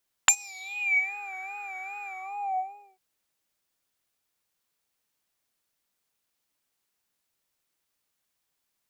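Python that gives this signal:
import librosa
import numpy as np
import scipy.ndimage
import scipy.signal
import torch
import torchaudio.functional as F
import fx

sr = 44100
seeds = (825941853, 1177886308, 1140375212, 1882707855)

y = fx.sub_patch_vibrato(sr, seeds[0], note=79, wave='triangle', wave2='square', interval_st=19, detune_cents=16, level2_db=-5.5, sub_db=-19.5, noise_db=-19.5, kind='bandpass', cutoff_hz=430.0, q=9.2, env_oct=4.0, env_decay_s=0.93, env_sustain_pct=45, attack_ms=2.9, decay_s=0.07, sustain_db=-21.5, release_s=0.91, note_s=1.79, lfo_hz=2.5, vibrato_cents=79)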